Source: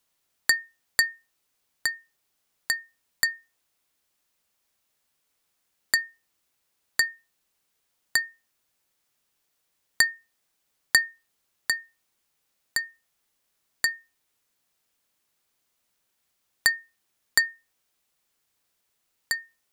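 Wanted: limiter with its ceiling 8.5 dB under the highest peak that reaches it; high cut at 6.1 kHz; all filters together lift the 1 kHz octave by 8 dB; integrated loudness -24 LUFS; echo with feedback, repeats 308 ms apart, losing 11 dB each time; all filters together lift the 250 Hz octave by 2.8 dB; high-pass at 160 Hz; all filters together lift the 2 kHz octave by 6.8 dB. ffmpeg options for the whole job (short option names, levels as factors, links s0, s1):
-af "highpass=160,lowpass=6100,equalizer=f=250:t=o:g=4,equalizer=f=1000:t=o:g=8.5,equalizer=f=2000:t=o:g=5,alimiter=limit=0.422:level=0:latency=1,aecho=1:1:308|616|924:0.282|0.0789|0.0221,volume=1.26"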